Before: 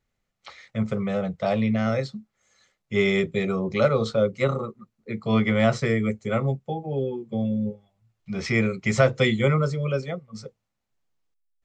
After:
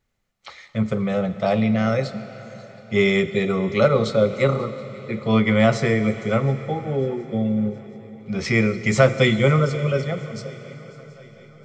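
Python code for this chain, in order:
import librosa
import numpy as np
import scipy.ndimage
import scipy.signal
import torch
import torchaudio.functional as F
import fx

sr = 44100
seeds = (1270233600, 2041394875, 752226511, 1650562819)

y = fx.echo_swing(x, sr, ms=722, ratio=3, feedback_pct=53, wet_db=-23)
y = fx.rev_schroeder(y, sr, rt60_s=4.0, comb_ms=26, drr_db=11.5)
y = y * librosa.db_to_amplitude(3.5)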